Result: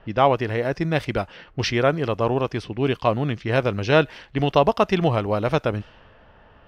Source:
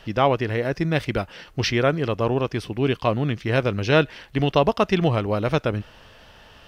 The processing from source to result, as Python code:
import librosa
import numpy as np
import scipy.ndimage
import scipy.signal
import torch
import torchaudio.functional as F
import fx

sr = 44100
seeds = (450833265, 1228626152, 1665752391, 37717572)

y = fx.dynamic_eq(x, sr, hz=810.0, q=1.1, threshold_db=-32.0, ratio=4.0, max_db=4)
y = fx.env_lowpass(y, sr, base_hz=1400.0, full_db=-18.0)
y = F.gain(torch.from_numpy(y), -1.0).numpy()